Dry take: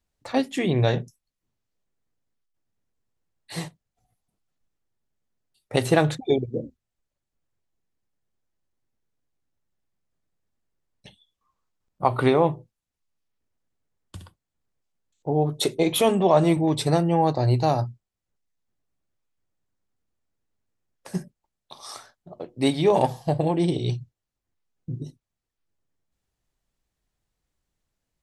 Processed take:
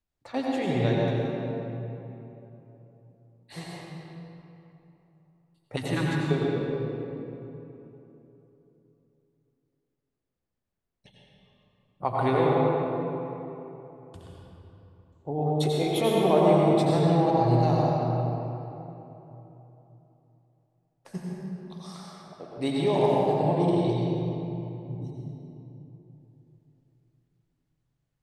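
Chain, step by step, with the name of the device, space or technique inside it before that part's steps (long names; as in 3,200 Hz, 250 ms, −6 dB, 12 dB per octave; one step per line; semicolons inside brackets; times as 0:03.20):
0:05.77–0:06.31: elliptic band-stop filter 330–910 Hz
swimming-pool hall (convolution reverb RT60 3.3 s, pre-delay 80 ms, DRR −4 dB; high-shelf EQ 5,600 Hz −6.5 dB)
level −7.5 dB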